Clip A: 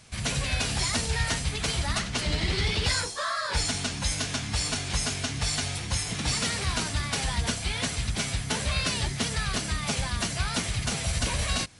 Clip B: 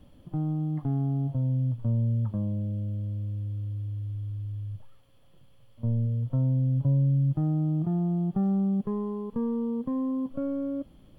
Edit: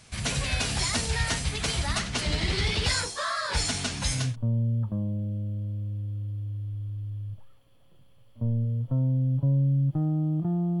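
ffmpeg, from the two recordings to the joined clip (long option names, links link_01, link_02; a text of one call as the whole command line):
ffmpeg -i cue0.wav -i cue1.wav -filter_complex "[0:a]apad=whole_dur=10.8,atrim=end=10.8,atrim=end=4.36,asetpts=PTS-STARTPTS[link_01];[1:a]atrim=start=1.46:end=8.22,asetpts=PTS-STARTPTS[link_02];[link_01][link_02]acrossfade=duration=0.32:curve1=qsin:curve2=qsin" out.wav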